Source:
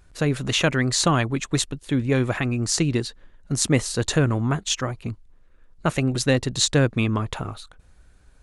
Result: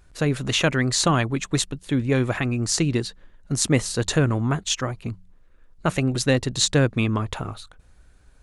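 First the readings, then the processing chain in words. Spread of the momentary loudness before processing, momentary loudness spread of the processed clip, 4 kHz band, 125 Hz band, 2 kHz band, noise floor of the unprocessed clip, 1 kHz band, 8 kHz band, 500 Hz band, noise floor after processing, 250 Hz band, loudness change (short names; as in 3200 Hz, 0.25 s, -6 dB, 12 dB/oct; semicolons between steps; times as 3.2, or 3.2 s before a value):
10 LU, 10 LU, 0.0 dB, 0.0 dB, 0.0 dB, -54 dBFS, 0.0 dB, 0.0 dB, 0.0 dB, -53 dBFS, 0.0 dB, 0.0 dB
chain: de-hum 91.49 Hz, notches 2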